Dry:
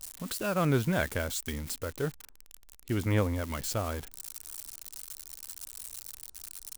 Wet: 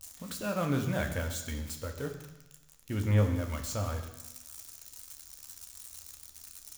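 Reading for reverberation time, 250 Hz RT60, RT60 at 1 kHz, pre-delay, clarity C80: 1.0 s, 1.0 s, 1.1 s, 3 ms, 10.0 dB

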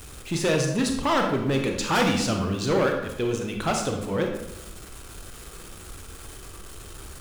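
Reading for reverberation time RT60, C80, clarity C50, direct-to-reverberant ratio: 0.90 s, 7.5 dB, 4.5 dB, 2.5 dB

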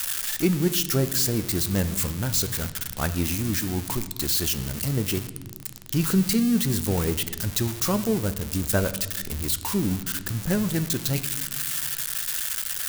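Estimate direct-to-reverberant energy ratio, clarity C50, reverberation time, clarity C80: 10.0 dB, 14.5 dB, 1.4 s, 16.0 dB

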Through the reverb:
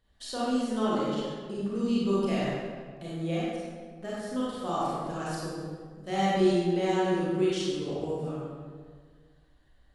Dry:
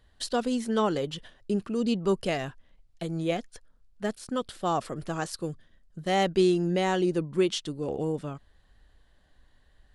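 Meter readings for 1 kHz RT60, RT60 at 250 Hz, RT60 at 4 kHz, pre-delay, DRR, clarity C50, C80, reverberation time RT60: 1.6 s, 1.9 s, 1.1 s, 29 ms, -8.0 dB, -4.5 dB, -1.0 dB, 1.7 s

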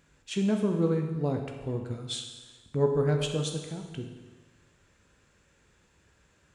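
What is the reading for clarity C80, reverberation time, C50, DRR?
7.5 dB, 1.3 s, 5.5 dB, 3.0 dB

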